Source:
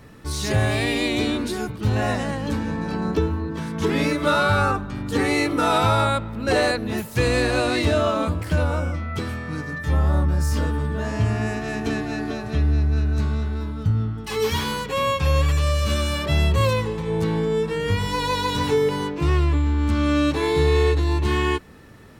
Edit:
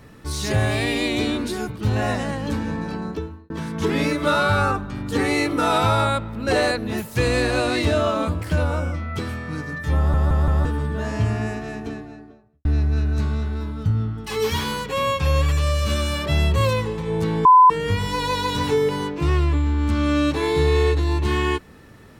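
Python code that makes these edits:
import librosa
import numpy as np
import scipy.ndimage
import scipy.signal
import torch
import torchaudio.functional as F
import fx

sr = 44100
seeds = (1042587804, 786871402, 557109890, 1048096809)

y = fx.studio_fade_out(x, sr, start_s=11.15, length_s=1.5)
y = fx.edit(y, sr, fx.fade_out_span(start_s=2.76, length_s=0.74),
    fx.stutter_over(start_s=9.97, slice_s=0.17, count=4),
    fx.bleep(start_s=17.45, length_s=0.25, hz=1010.0, db=-7.0), tone=tone)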